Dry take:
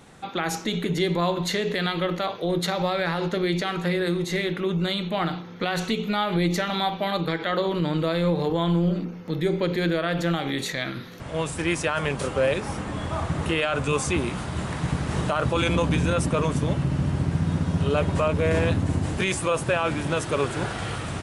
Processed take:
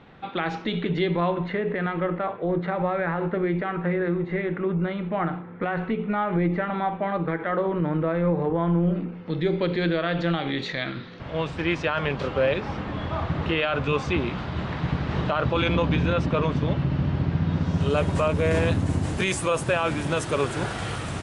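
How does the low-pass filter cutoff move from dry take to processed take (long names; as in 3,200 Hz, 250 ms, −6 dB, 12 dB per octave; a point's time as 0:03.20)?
low-pass filter 24 dB per octave
0:00.95 3,500 Hz
0:01.62 2,000 Hz
0:08.71 2,000 Hz
0:09.39 4,300 Hz
0:17.50 4,300 Hz
0:18.02 11,000 Hz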